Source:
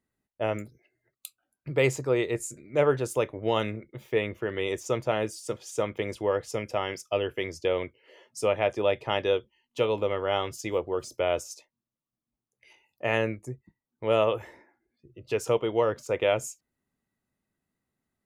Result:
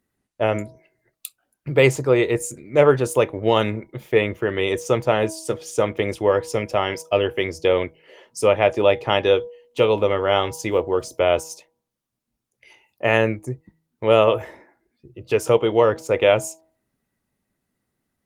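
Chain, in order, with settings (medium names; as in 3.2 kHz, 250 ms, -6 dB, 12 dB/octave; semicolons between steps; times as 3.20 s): de-hum 160.8 Hz, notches 6; trim +8.5 dB; Opus 24 kbps 48 kHz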